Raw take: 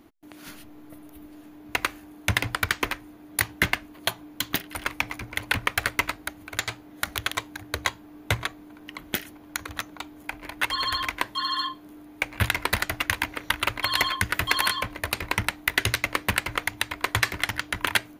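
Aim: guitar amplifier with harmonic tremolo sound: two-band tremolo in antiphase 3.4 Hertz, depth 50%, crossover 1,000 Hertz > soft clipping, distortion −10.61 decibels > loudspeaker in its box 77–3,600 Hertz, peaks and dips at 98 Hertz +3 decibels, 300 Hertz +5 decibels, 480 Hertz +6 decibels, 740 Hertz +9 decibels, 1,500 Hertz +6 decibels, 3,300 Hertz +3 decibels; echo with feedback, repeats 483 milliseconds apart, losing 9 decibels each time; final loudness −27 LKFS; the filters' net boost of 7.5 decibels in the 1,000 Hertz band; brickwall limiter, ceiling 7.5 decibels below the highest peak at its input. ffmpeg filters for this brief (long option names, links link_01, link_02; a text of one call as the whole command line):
ffmpeg -i in.wav -filter_complex "[0:a]equalizer=frequency=1000:width_type=o:gain=5,alimiter=limit=-9.5dB:level=0:latency=1,aecho=1:1:483|966|1449|1932:0.355|0.124|0.0435|0.0152,acrossover=split=1000[link_01][link_02];[link_01]aeval=exprs='val(0)*(1-0.5/2+0.5/2*cos(2*PI*3.4*n/s))':channel_layout=same[link_03];[link_02]aeval=exprs='val(0)*(1-0.5/2-0.5/2*cos(2*PI*3.4*n/s))':channel_layout=same[link_04];[link_03][link_04]amix=inputs=2:normalize=0,asoftclip=threshold=-22dB,highpass=77,equalizer=frequency=98:width_type=q:width=4:gain=3,equalizer=frequency=300:width_type=q:width=4:gain=5,equalizer=frequency=480:width_type=q:width=4:gain=6,equalizer=frequency=740:width_type=q:width=4:gain=9,equalizer=frequency=1500:width_type=q:width=4:gain=6,equalizer=frequency=3300:width_type=q:width=4:gain=3,lowpass=frequency=3600:width=0.5412,lowpass=frequency=3600:width=1.3066,volume=3.5dB" out.wav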